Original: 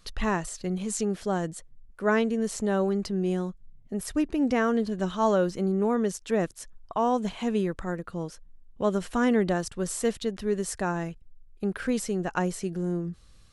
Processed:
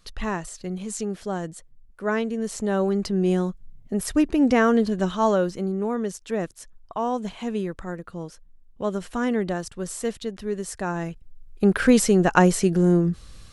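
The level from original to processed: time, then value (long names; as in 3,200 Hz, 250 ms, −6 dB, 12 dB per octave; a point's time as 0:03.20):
0:02.27 −1 dB
0:03.31 +6 dB
0:04.87 +6 dB
0:05.77 −1 dB
0:10.74 −1 dB
0:11.71 +11 dB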